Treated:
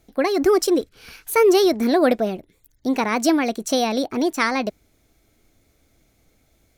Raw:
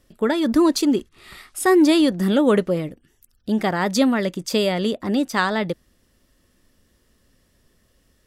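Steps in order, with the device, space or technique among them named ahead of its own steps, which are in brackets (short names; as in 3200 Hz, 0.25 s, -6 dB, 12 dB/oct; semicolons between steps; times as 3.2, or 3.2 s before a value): nightcore (varispeed +22%)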